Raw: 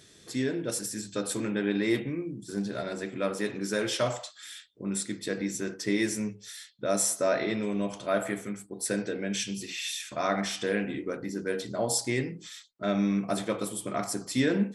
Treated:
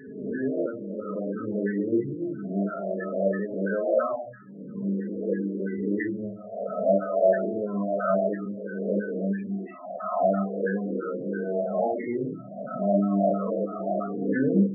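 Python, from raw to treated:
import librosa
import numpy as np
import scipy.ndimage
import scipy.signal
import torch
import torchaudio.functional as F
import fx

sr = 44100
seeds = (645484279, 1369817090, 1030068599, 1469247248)

y = fx.spec_swells(x, sr, rise_s=1.38)
y = fx.peak_eq(y, sr, hz=76.0, db=9.5, octaves=0.2)
y = fx.room_shoebox(y, sr, seeds[0], volume_m3=370.0, walls='furnished', distance_m=1.5)
y = fx.filter_lfo_lowpass(y, sr, shape='saw_down', hz=3.0, low_hz=510.0, high_hz=1700.0, q=3.2)
y = scipy.signal.sosfilt(scipy.signal.butter(4, 5100.0, 'lowpass', fs=sr, output='sos'), y)
y = fx.spec_topn(y, sr, count=16)
y = y * 10.0 ** (-5.5 / 20.0)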